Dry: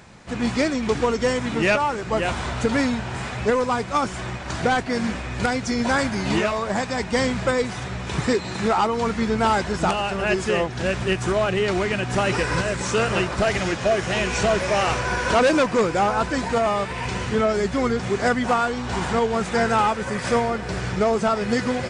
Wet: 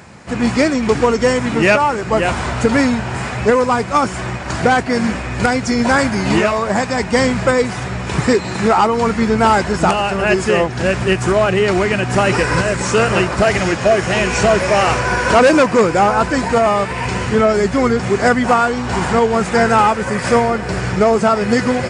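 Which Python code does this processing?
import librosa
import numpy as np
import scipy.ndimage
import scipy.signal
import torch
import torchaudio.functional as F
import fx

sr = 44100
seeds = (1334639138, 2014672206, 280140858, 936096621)

y = scipy.signal.sosfilt(scipy.signal.butter(2, 55.0, 'highpass', fs=sr, output='sos'), x)
y = fx.peak_eq(y, sr, hz=3600.0, db=-5.5, octaves=0.49)
y = fx.notch(y, sr, hz=6000.0, q=24.0)
y = F.gain(torch.from_numpy(y), 7.5).numpy()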